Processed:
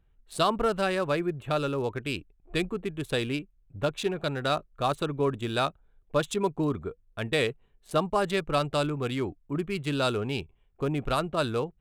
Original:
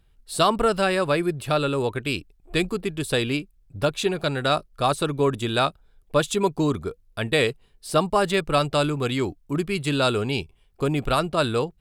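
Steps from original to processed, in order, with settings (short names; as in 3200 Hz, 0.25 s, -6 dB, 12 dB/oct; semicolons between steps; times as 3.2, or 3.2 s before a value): Wiener smoothing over 9 samples; gain -5 dB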